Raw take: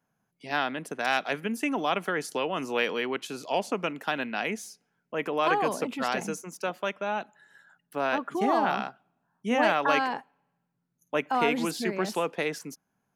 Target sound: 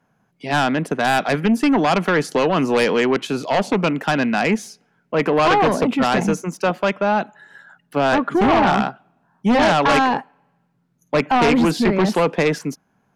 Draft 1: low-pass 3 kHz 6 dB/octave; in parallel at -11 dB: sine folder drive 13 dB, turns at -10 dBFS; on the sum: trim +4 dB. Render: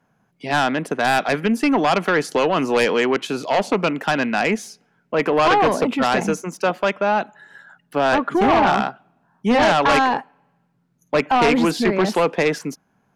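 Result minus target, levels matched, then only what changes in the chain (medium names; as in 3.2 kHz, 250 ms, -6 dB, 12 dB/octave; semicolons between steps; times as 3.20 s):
125 Hz band -4.0 dB
add after low-pass: dynamic bell 150 Hz, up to +6 dB, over -45 dBFS, Q 0.81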